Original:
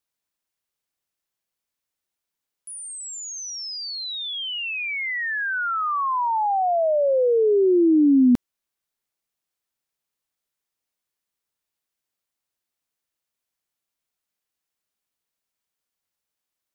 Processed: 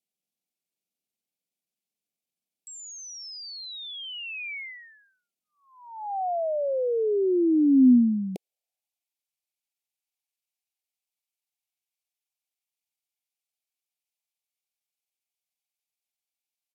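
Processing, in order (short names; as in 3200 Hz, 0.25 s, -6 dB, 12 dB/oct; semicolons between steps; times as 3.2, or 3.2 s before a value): high-pass sweep 240 Hz -> 1400 Hz, 7.67–9.08; Chebyshev band-stop 1000–2900 Hz, order 3; pitch shift -4.5 st; gain -5.5 dB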